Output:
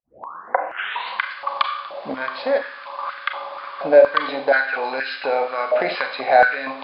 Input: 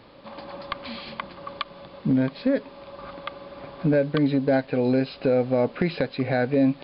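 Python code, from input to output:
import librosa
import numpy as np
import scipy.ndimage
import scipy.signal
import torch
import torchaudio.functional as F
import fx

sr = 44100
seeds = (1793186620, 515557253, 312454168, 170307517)

y = fx.tape_start_head(x, sr, length_s=1.19)
y = fx.rev_schroeder(y, sr, rt60_s=0.69, comb_ms=30, drr_db=5.0)
y = fx.filter_held_highpass(y, sr, hz=4.2, low_hz=680.0, high_hz=1600.0)
y = y * librosa.db_to_amplitude(5.5)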